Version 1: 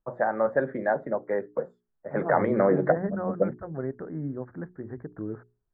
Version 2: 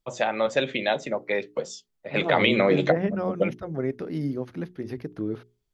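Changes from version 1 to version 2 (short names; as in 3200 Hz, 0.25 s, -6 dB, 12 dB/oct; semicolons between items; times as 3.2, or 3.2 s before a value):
second voice: add bell 310 Hz +4.5 dB 2.2 oct; master: remove elliptic low-pass 1700 Hz, stop band 40 dB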